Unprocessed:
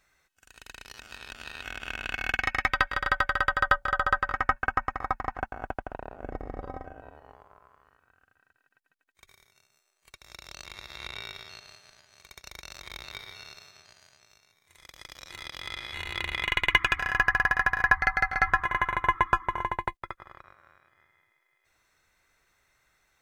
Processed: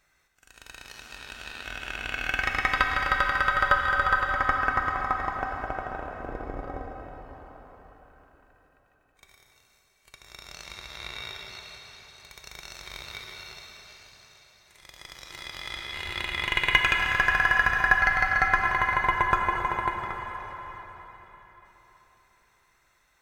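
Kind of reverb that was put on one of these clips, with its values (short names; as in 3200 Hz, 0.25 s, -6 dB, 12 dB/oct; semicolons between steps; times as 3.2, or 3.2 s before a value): plate-style reverb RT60 4.3 s, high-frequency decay 1×, DRR 1.5 dB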